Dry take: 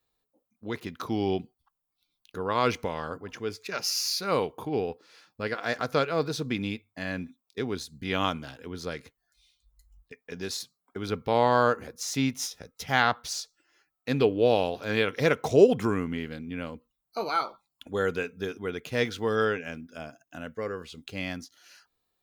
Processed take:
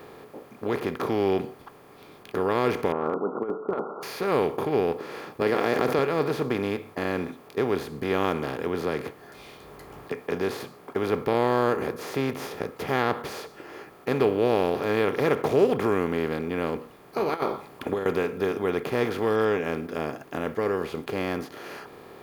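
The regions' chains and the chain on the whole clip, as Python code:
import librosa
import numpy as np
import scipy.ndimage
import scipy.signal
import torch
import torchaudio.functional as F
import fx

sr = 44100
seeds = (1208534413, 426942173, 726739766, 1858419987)

y = fx.chain(x, sr, fx.brickwall_bandpass(low_hz=170.0, high_hz=1500.0),
    fx.over_compress(threshold_db=-36.0, ratio=-0.5), at=(2.92, 4.03))
y = fx.chain(y, sr, fx.highpass(hz=190.0, slope=12),
    fx.peak_eq(hz=1200.0, db=-6.5, octaves=1.1),
    fx.env_flatten(amount_pct=70), at=(5.41, 5.99))
y = fx.chain(y, sr, fx.highpass(hz=55.0, slope=12),
    fx.band_squash(depth_pct=40), at=(8.81, 10.34))
y = fx.chain(y, sr, fx.peak_eq(hz=6200.0, db=-4.0, octaves=1.7),
    fx.over_compress(threshold_db=-33.0, ratio=-0.5), at=(17.34, 18.06))
y = fx.bin_compress(y, sr, power=0.4)
y = fx.peak_eq(y, sr, hz=5900.0, db=-13.0, octaves=1.4)
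y = fx.notch(y, sr, hz=1500.0, q=11.0)
y = y * librosa.db_to_amplitude(-5.0)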